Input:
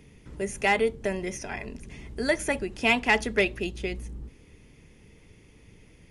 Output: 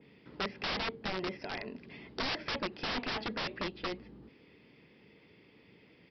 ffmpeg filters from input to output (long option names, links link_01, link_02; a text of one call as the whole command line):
ffmpeg -i in.wav -af "highpass=200,aresample=11025,aeval=exprs='(mod(20*val(0)+1,2)-1)/20':channel_layout=same,aresample=44100,adynamicequalizer=threshold=0.00447:dfrequency=2500:dqfactor=0.7:tfrequency=2500:tqfactor=0.7:attack=5:release=100:ratio=0.375:range=2.5:mode=cutabove:tftype=highshelf,volume=-2dB" out.wav